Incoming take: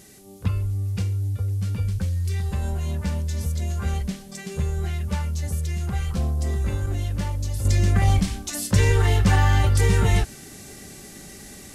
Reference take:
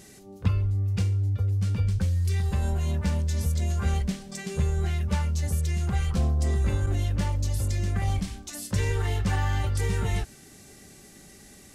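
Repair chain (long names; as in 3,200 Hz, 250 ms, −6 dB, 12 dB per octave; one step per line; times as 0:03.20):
downward expander −34 dBFS, range −21 dB
level correction −8 dB, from 0:07.65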